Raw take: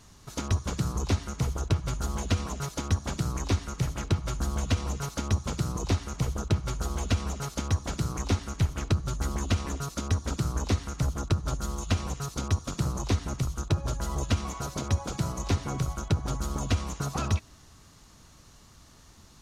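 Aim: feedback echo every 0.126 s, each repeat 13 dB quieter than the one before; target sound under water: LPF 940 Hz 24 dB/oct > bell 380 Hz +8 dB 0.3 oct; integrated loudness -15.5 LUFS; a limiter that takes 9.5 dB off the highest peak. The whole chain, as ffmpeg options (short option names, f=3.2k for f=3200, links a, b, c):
-af "alimiter=level_in=1dB:limit=-24dB:level=0:latency=1,volume=-1dB,lowpass=f=940:w=0.5412,lowpass=f=940:w=1.3066,equalizer=f=380:t=o:w=0.3:g=8,aecho=1:1:126|252|378:0.224|0.0493|0.0108,volume=20dB"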